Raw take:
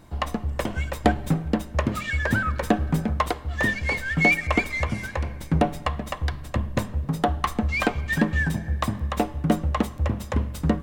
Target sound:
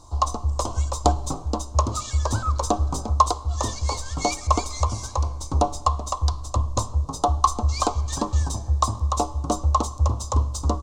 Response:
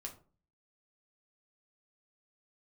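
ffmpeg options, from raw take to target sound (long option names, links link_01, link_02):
-af "firequalizer=gain_entry='entry(100,0);entry(160,-21);entry(270,-8);entry(540,-6);entry(1100,5);entry(1700,-28);entry(4000,1);entry(6500,11);entry(13000,-14)':delay=0.05:min_phase=1,volume=4.5dB"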